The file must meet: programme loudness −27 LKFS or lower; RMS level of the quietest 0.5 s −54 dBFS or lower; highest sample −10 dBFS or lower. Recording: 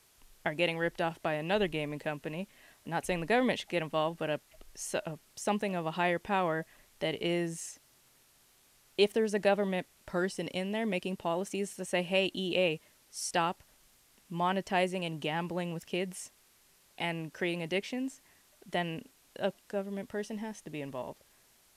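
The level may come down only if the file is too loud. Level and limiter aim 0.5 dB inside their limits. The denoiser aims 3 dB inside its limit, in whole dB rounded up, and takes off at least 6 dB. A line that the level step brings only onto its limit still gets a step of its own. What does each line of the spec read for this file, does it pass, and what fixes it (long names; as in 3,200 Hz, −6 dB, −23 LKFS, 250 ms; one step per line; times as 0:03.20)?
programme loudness −33.5 LKFS: in spec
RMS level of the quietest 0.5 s −65 dBFS: in spec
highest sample −14.0 dBFS: in spec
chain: no processing needed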